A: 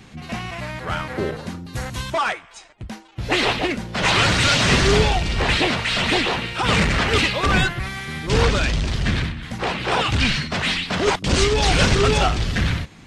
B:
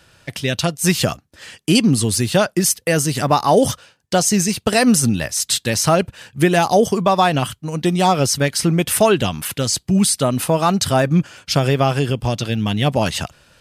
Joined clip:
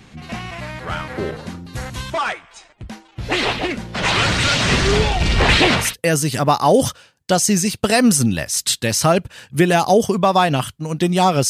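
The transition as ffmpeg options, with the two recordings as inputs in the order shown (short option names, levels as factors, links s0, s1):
-filter_complex "[0:a]asettb=1/sr,asplit=3[s0][s1][s2];[s0]atrim=end=5.204[s3];[s1]atrim=start=5.2:end=5.95,asetpts=PTS-STARTPTS,afade=t=in:d=0.004:c=qsin,afade=t=out:st=0.746:d=0.004:c=qsin,acontrast=54[s4];[s2]atrim=start=5.946[s5];[s3][s4]acrossfade=d=0.004:c1=hsin:c2=qsin[s6];[s6][s5]acrossfade=d=0.004:c1=qsin:c2=hsin,apad=whole_dur=11.49,atrim=end=11.49,atrim=end=5.95,asetpts=PTS-STARTPTS[s7];[1:a]atrim=start=2.6:end=8.32,asetpts=PTS-STARTPTS[s8];[s7][s8]acrossfade=d=0.18:c1=tri:c2=tri"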